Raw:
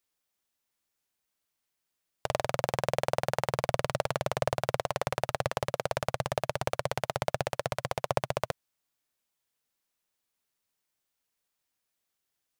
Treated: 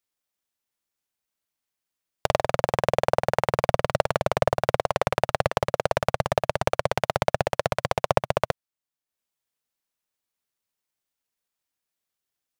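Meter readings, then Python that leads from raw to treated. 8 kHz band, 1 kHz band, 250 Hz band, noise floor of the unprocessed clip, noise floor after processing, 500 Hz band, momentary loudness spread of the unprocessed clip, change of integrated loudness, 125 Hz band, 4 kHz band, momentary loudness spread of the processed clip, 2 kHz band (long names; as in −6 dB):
+2.0 dB, +7.5 dB, +7.0 dB, −83 dBFS, below −85 dBFS, +7.5 dB, 3 LU, +7.0 dB, +5.5 dB, +4.5 dB, 3 LU, +6.5 dB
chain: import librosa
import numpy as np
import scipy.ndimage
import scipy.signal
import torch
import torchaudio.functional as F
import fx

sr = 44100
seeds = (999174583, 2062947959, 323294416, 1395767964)

y = fx.tracing_dist(x, sr, depth_ms=0.027)
y = fx.transient(y, sr, attack_db=11, sustain_db=-6)
y = y * 10.0 ** (-3.0 / 20.0)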